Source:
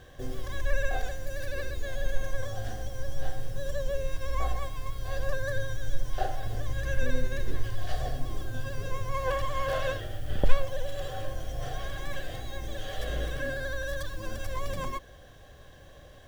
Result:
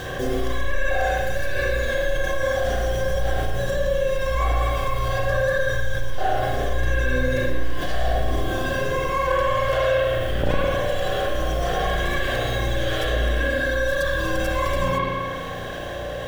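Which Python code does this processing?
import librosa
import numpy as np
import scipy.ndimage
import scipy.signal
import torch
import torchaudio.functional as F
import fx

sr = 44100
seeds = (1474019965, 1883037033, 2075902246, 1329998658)

p1 = fx.low_shelf(x, sr, hz=120.0, db=-11.5)
p2 = fx.rider(p1, sr, range_db=10, speed_s=0.5)
p3 = p1 + (p2 * librosa.db_to_amplitude(1.0))
p4 = fx.rev_spring(p3, sr, rt60_s=1.3, pass_ms=(34, 51), chirp_ms=60, drr_db=-6.0)
p5 = fx.env_flatten(p4, sr, amount_pct=50)
y = p5 * librosa.db_to_amplitude(-6.5)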